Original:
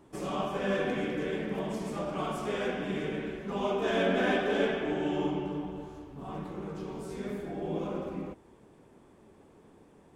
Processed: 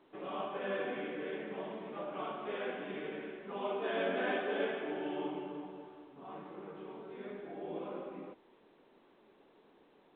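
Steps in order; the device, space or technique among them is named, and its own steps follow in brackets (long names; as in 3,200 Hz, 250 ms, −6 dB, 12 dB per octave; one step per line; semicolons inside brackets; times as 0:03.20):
telephone (band-pass filter 300–3,600 Hz; level −5.5 dB; A-law companding 64 kbit/s 8,000 Hz)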